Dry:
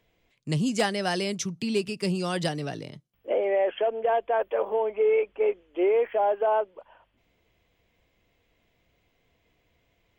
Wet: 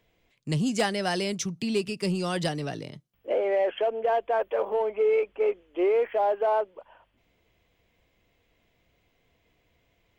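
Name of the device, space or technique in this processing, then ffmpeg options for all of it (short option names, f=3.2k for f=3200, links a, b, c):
parallel distortion: -filter_complex "[0:a]asplit=2[a][b];[b]asoftclip=type=hard:threshold=-28dB,volume=-12dB[c];[a][c]amix=inputs=2:normalize=0,volume=-1.5dB"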